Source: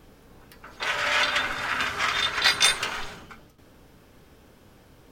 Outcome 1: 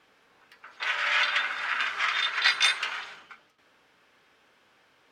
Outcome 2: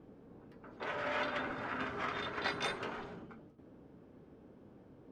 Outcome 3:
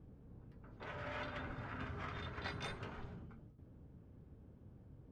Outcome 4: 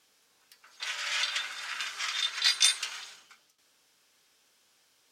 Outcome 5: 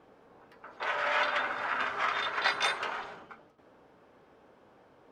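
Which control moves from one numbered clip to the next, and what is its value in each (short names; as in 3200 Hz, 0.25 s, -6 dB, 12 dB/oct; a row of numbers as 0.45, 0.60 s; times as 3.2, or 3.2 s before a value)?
band-pass, frequency: 2100, 280, 100, 6400, 750 Hz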